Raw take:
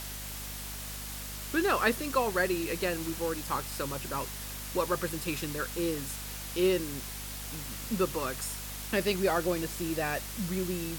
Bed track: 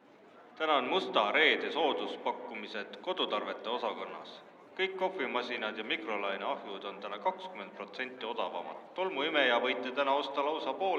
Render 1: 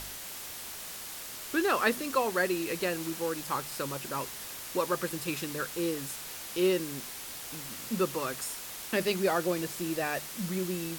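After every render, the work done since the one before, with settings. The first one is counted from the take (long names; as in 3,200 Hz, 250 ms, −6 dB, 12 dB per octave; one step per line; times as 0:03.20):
hum removal 50 Hz, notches 5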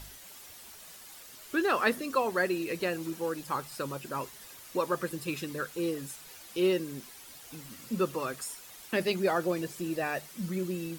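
broadband denoise 10 dB, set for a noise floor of −42 dBFS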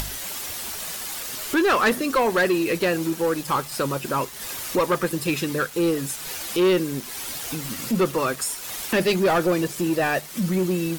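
upward compression, threshold −34 dBFS
leveller curve on the samples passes 3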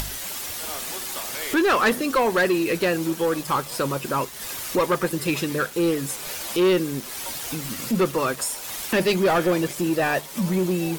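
mix in bed track −9.5 dB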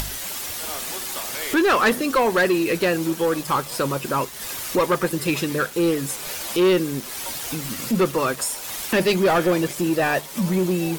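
level +1.5 dB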